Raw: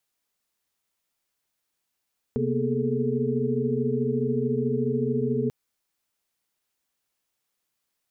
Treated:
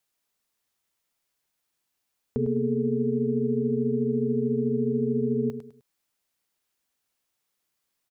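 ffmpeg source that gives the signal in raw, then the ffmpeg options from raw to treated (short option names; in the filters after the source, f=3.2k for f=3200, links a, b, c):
-f lavfi -i "aevalsrc='0.0355*(sin(2*PI*130.81*t)+sin(2*PI*233.08*t)+sin(2*PI*246.94*t)+sin(2*PI*415.3*t)+sin(2*PI*440*t))':d=3.14:s=44100"
-af "aecho=1:1:103|206|309:0.316|0.0949|0.0285"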